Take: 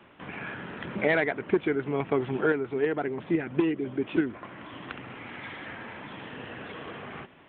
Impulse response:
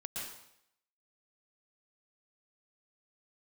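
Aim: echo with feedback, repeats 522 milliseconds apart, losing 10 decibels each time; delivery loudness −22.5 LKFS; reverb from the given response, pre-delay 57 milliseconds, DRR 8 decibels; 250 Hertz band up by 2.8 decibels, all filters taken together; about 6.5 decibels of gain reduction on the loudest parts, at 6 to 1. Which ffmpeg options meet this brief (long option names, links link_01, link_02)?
-filter_complex "[0:a]equalizer=frequency=250:width_type=o:gain=4,acompressor=threshold=-24dB:ratio=6,aecho=1:1:522|1044|1566|2088:0.316|0.101|0.0324|0.0104,asplit=2[link_01][link_02];[1:a]atrim=start_sample=2205,adelay=57[link_03];[link_02][link_03]afir=irnorm=-1:irlink=0,volume=-8.5dB[link_04];[link_01][link_04]amix=inputs=2:normalize=0,volume=9.5dB"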